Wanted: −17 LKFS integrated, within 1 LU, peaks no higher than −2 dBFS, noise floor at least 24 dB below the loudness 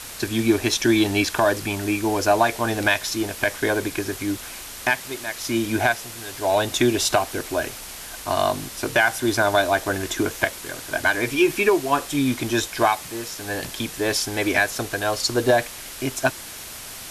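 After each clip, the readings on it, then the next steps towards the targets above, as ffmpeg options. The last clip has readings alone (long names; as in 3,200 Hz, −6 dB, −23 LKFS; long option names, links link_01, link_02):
background noise floor −37 dBFS; target noise floor −47 dBFS; integrated loudness −22.5 LKFS; sample peak −4.0 dBFS; target loudness −17.0 LKFS
→ -af "afftdn=noise_reduction=10:noise_floor=-37"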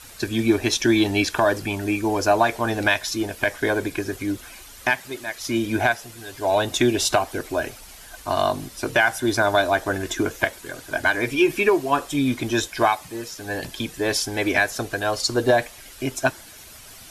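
background noise floor −44 dBFS; target noise floor −47 dBFS
→ -af "afftdn=noise_reduction=6:noise_floor=-44"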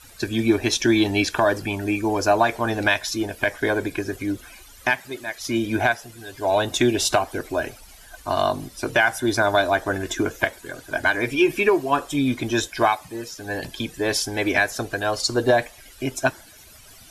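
background noise floor −47 dBFS; integrated loudness −22.5 LKFS; sample peak −4.0 dBFS; target loudness −17.0 LKFS
→ -af "volume=5.5dB,alimiter=limit=-2dB:level=0:latency=1"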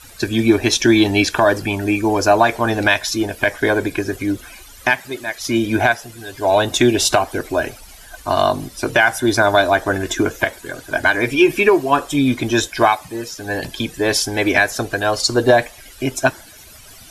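integrated loudness −17.5 LKFS; sample peak −2.0 dBFS; background noise floor −42 dBFS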